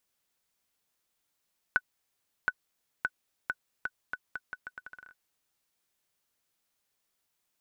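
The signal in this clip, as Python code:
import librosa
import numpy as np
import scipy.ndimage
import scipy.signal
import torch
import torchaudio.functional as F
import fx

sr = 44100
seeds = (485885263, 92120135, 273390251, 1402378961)

y = fx.bouncing_ball(sr, first_gap_s=0.72, ratio=0.79, hz=1490.0, decay_ms=47.0, level_db=-12.5)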